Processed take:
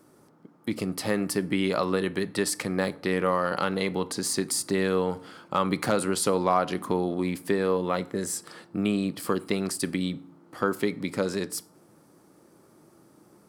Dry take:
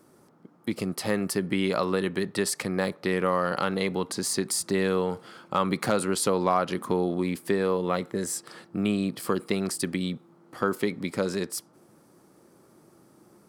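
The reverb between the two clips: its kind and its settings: FDN reverb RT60 0.55 s, low-frequency decay 1.5×, high-frequency decay 0.7×, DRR 15.5 dB

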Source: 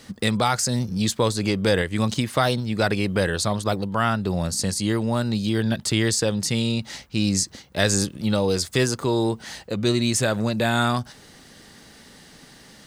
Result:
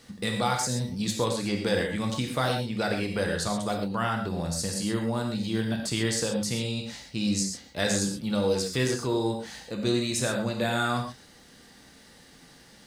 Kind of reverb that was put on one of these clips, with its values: non-linear reverb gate 0.15 s flat, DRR 1.5 dB; gain -7.5 dB

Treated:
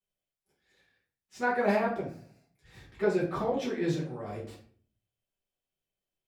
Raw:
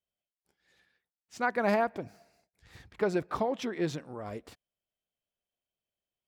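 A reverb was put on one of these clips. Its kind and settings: shoebox room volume 44 m³, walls mixed, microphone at 1.4 m; gain -7.5 dB

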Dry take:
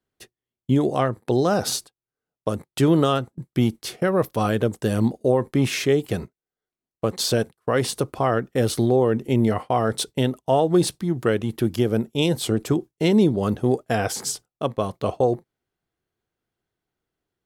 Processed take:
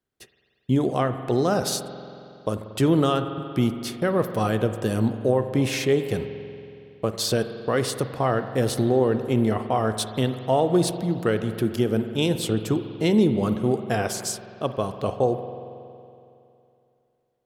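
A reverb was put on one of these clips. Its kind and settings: spring tank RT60 2.7 s, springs 46 ms, chirp 40 ms, DRR 9 dB; gain -2 dB

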